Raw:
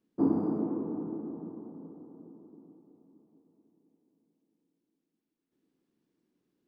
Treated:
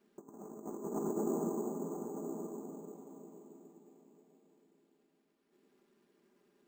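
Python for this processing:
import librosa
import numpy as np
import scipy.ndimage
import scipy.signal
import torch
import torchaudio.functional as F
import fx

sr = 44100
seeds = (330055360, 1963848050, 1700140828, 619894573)

p1 = fx.bass_treble(x, sr, bass_db=-15, treble_db=-12)
p2 = p1 + 0.85 * np.pad(p1, (int(5.0 * sr / 1000.0), 0))[:len(p1)]
p3 = fx.over_compress(p2, sr, threshold_db=-43.0, ratio=-0.5)
p4 = p3 + fx.echo_single(p3, sr, ms=974, db=-9.5, dry=0)
p5 = np.repeat(p4[::6], 6)[:len(p4)]
y = F.gain(torch.from_numpy(p5), 5.0).numpy()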